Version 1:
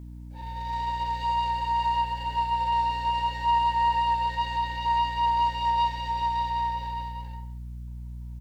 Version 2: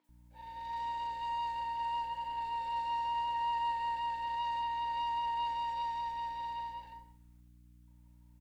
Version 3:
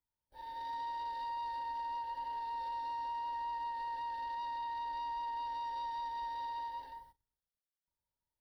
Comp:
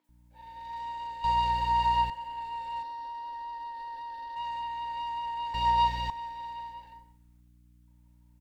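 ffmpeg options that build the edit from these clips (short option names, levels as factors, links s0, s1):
-filter_complex "[0:a]asplit=2[s0][s1];[1:a]asplit=4[s2][s3][s4][s5];[s2]atrim=end=1.242[s6];[s0]atrim=start=1.238:end=2.102[s7];[s3]atrim=start=2.098:end=2.832[s8];[2:a]atrim=start=2.828:end=4.362[s9];[s4]atrim=start=4.358:end=5.542[s10];[s1]atrim=start=5.538:end=6.102[s11];[s5]atrim=start=6.098[s12];[s6][s7]acrossfade=d=0.004:c1=hsin:c2=hsin[s13];[s13][s8]acrossfade=d=0.004:c1=hsin:c2=hsin[s14];[s14][s9]acrossfade=d=0.004:c1=hsin:c2=hsin[s15];[s15][s10]acrossfade=d=0.004:c1=hsin:c2=hsin[s16];[s16][s11]acrossfade=d=0.004:c1=hsin:c2=hsin[s17];[s17][s12]acrossfade=d=0.004:c1=hsin:c2=hsin"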